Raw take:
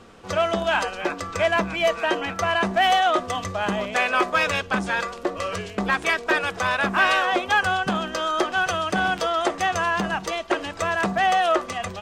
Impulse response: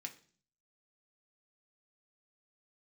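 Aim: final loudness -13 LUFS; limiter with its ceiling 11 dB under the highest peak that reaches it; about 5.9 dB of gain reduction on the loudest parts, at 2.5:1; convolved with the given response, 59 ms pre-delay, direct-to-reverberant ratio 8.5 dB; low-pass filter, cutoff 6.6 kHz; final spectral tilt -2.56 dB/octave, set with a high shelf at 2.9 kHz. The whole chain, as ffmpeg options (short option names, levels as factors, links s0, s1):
-filter_complex "[0:a]lowpass=6600,highshelf=f=2900:g=-4,acompressor=threshold=0.0562:ratio=2.5,alimiter=limit=0.0708:level=0:latency=1,asplit=2[s0][s1];[1:a]atrim=start_sample=2205,adelay=59[s2];[s1][s2]afir=irnorm=-1:irlink=0,volume=0.531[s3];[s0][s3]amix=inputs=2:normalize=0,volume=8.41"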